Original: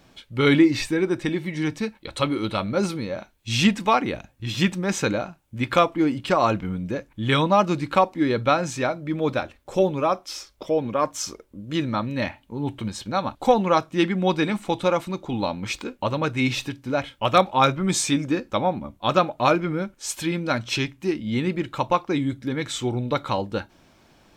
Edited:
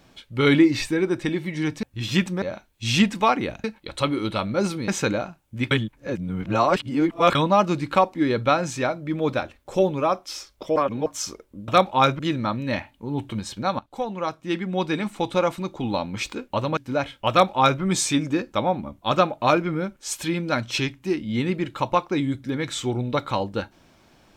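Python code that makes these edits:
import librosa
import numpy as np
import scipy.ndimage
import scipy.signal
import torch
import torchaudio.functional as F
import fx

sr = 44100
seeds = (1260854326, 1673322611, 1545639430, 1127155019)

y = fx.edit(x, sr, fx.swap(start_s=1.83, length_s=1.24, other_s=4.29, other_length_s=0.59),
    fx.reverse_span(start_s=5.71, length_s=1.64),
    fx.reverse_span(start_s=10.76, length_s=0.3),
    fx.fade_in_from(start_s=13.28, length_s=1.66, floor_db=-15.0),
    fx.cut(start_s=16.26, length_s=0.49),
    fx.duplicate(start_s=17.28, length_s=0.51, to_s=11.68), tone=tone)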